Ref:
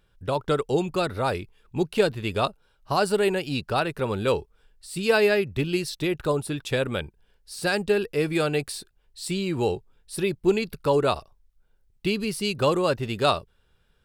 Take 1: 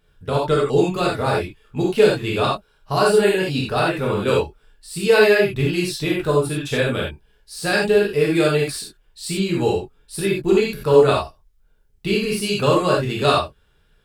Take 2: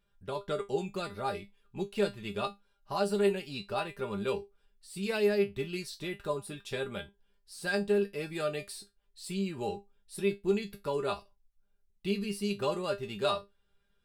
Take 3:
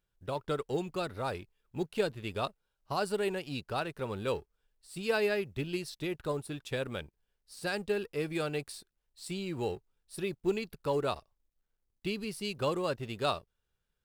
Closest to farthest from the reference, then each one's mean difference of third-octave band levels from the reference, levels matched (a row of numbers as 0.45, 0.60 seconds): 3, 2, 1; 1.0, 3.0, 5.5 decibels